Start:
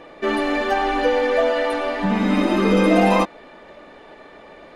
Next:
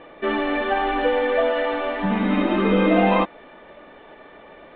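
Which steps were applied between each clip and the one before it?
elliptic low-pass 3.5 kHz, stop band 50 dB; trim -1 dB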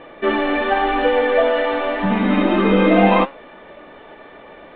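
flange 0.91 Hz, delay 7.1 ms, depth 6.3 ms, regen +83%; trim +8.5 dB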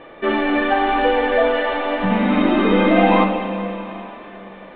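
plate-style reverb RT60 3.4 s, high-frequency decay 0.95×, DRR 5 dB; trim -1 dB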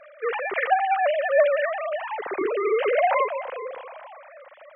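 formants replaced by sine waves; trim -6.5 dB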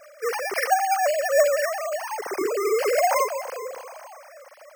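careless resampling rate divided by 6×, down filtered, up hold

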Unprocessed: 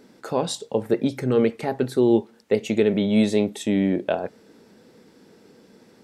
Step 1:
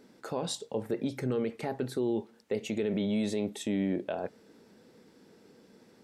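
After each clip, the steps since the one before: peak limiter -16 dBFS, peak gain reduction 8.5 dB; trim -6 dB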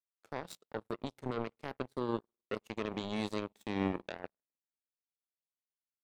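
spring tank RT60 1.7 s, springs 51 ms, chirp 80 ms, DRR 16 dB; power-law waveshaper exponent 3; trim +1.5 dB

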